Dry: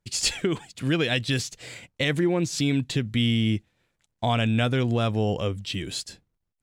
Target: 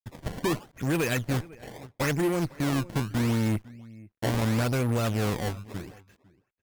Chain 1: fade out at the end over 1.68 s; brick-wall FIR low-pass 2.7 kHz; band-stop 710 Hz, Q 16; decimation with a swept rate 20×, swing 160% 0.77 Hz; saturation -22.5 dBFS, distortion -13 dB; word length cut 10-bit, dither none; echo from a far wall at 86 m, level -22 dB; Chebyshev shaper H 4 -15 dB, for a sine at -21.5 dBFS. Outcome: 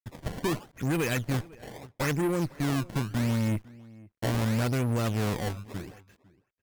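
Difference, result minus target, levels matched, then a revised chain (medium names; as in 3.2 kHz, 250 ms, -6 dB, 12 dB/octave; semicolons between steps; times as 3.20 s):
saturation: distortion +12 dB
fade out at the end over 1.68 s; brick-wall FIR low-pass 2.7 kHz; band-stop 710 Hz, Q 16; decimation with a swept rate 20×, swing 160% 0.77 Hz; saturation -14 dBFS, distortion -24 dB; word length cut 10-bit, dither none; echo from a far wall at 86 m, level -22 dB; Chebyshev shaper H 4 -15 dB, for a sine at -21.5 dBFS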